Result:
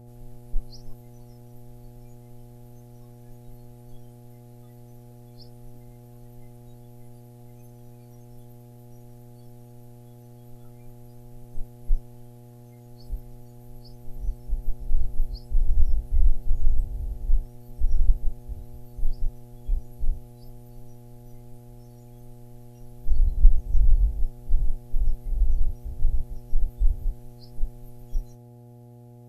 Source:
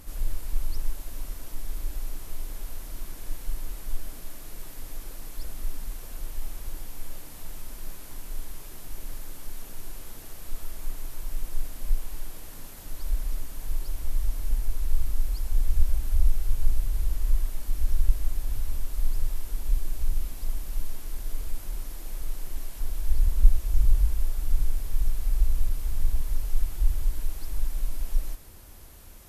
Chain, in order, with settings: spectral noise reduction 20 dB; mains buzz 120 Hz, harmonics 7, -49 dBFS -7 dB/octave; trim +2 dB

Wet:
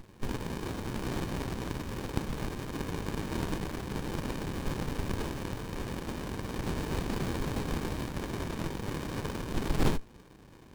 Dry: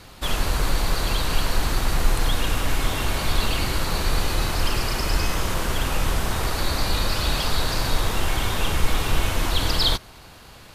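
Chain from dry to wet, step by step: frequency weighting ITU-R 468; sliding maximum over 65 samples; trim -7 dB

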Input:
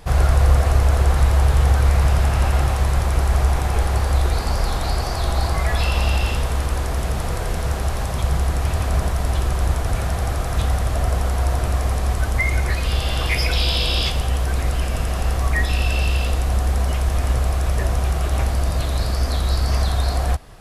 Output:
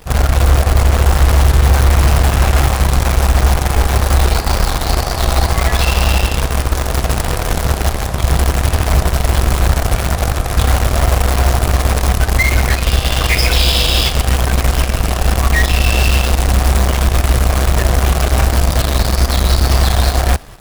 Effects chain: level rider gain up to 5 dB; in parallel at -9 dB: companded quantiser 2-bit; on the sum: trim -2.5 dB

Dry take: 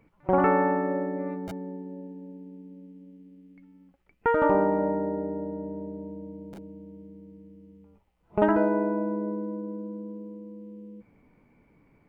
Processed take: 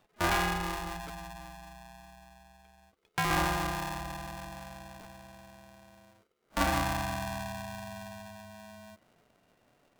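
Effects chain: gliding tape speed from 140% -> 102%; polarity switched at an audio rate 430 Hz; trim -6.5 dB

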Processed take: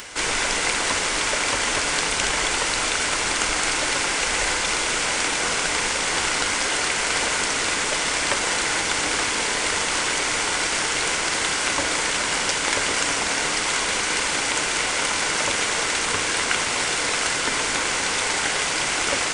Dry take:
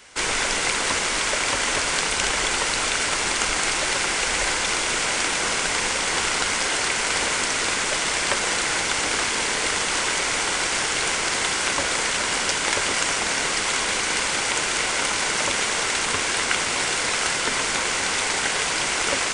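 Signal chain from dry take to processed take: upward compressor, threshold -29 dBFS; FDN reverb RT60 1.5 s, high-frequency decay 0.45×, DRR 10.5 dB

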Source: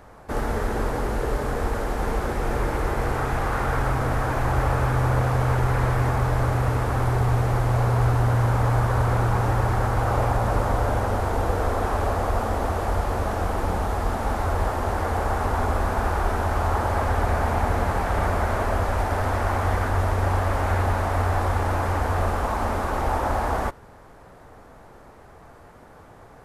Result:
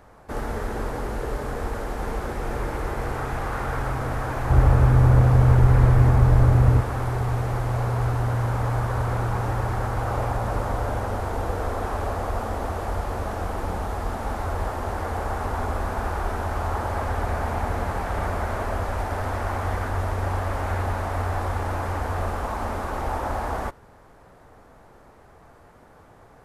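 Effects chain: 4.50–6.81 s: bass shelf 340 Hz +11.5 dB; trim -3.5 dB

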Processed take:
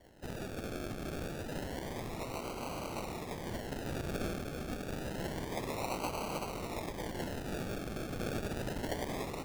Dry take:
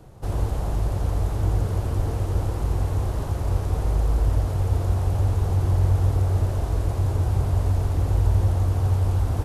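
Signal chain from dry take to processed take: spectral gate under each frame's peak -30 dB weak; peaking EQ 3.4 kHz +6 dB; decimation with a swept rate 35×, swing 60% 0.28 Hz; trim +4.5 dB

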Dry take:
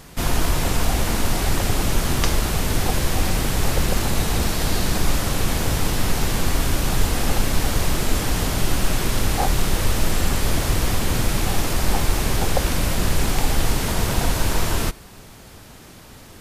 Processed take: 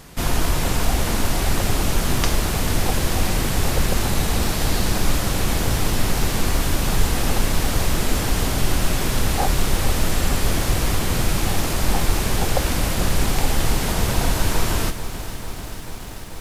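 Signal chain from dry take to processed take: bit-crushed delay 440 ms, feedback 80%, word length 7-bit, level -13 dB

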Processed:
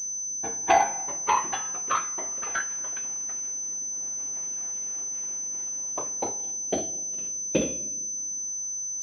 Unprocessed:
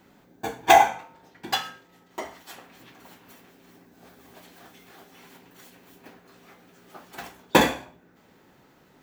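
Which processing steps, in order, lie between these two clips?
spectral selection erased 6.41–8.16 s, 650–2400 Hz; ever faster or slower copies 734 ms, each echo +4 st, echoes 3; on a send at -17.5 dB: reverberation RT60 1.5 s, pre-delay 3 ms; on the sum: class-D stage that switches slowly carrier 6.1 kHz; trim -5 dB

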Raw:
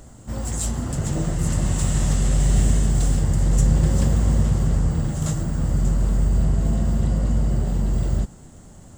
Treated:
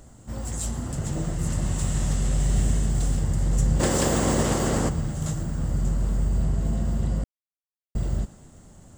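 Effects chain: 3.79–4.88 s: spectral peaks clipped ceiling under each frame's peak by 22 dB; thinning echo 116 ms, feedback 69%, level -18 dB; 7.24–7.95 s: mute; trim -4.5 dB

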